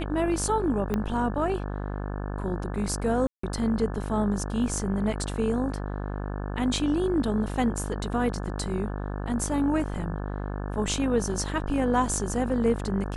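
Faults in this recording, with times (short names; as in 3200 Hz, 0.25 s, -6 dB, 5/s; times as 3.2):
buzz 50 Hz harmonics 35 -32 dBFS
0.94 pop -15 dBFS
3.27–3.43 gap 0.164 s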